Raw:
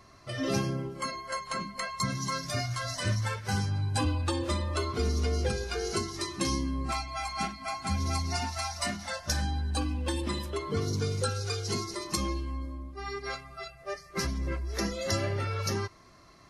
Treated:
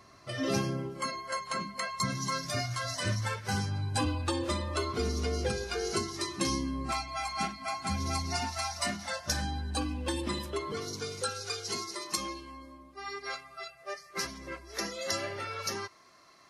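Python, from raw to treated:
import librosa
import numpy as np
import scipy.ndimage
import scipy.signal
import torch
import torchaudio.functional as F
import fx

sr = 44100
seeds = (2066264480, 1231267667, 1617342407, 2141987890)

y = fx.highpass(x, sr, hz=fx.steps((0.0, 110.0), (10.72, 620.0)), slope=6)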